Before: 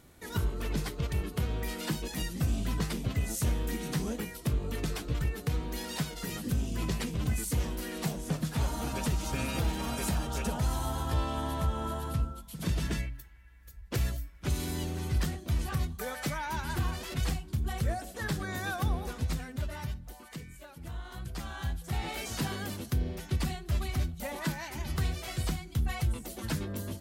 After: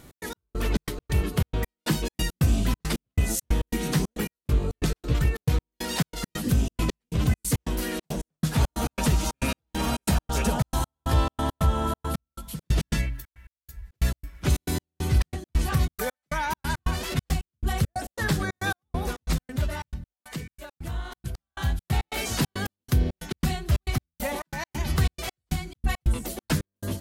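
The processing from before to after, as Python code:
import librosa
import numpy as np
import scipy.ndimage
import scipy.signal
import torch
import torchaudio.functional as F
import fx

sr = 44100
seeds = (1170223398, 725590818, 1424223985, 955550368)

y = fx.step_gate(x, sr, bpm=137, pattern='x.x..xx.x.xx', floor_db=-60.0, edge_ms=4.5)
y = y * 10.0 ** (8.0 / 20.0)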